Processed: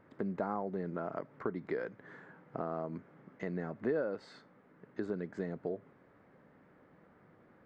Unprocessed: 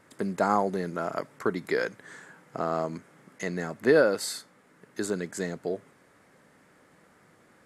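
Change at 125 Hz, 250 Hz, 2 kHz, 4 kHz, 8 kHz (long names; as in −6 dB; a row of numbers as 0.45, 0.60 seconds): −6.0 dB, −7.5 dB, −14.5 dB, −22.0 dB, below −30 dB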